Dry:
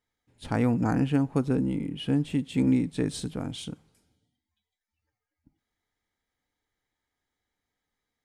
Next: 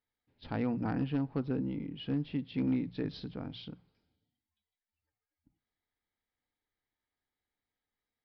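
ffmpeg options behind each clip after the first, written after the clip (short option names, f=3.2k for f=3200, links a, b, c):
-af "bandreject=f=60:t=h:w=6,bandreject=f=120:t=h:w=6,bandreject=f=180:t=h:w=6,aresample=11025,volume=16.5dB,asoftclip=hard,volume=-16.5dB,aresample=44100,volume=-7.5dB"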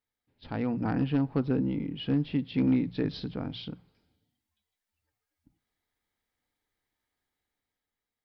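-af "dynaudnorm=f=180:g=9:m=6dB"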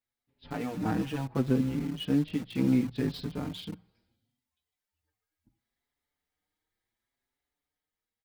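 -filter_complex "[0:a]asplit=2[a][b];[b]acrusher=bits=5:mix=0:aa=0.000001,volume=-8dB[c];[a][c]amix=inputs=2:normalize=0,asplit=2[d][e];[e]adelay=5.6,afreqshift=0.71[f];[d][f]amix=inputs=2:normalize=1"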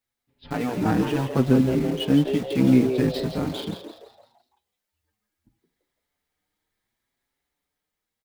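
-filter_complex "[0:a]asplit=2[a][b];[b]aeval=exprs='val(0)*gte(abs(val(0)),0.0112)':c=same,volume=-11.5dB[c];[a][c]amix=inputs=2:normalize=0,asplit=6[d][e][f][g][h][i];[e]adelay=168,afreqshift=130,volume=-9dB[j];[f]adelay=336,afreqshift=260,volume=-16.7dB[k];[g]adelay=504,afreqshift=390,volume=-24.5dB[l];[h]adelay=672,afreqshift=520,volume=-32.2dB[m];[i]adelay=840,afreqshift=650,volume=-40dB[n];[d][j][k][l][m][n]amix=inputs=6:normalize=0,volume=5.5dB"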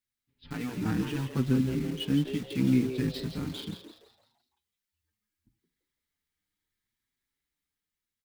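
-af "equalizer=f=640:w=1.1:g=-14.5,volume=-4.5dB"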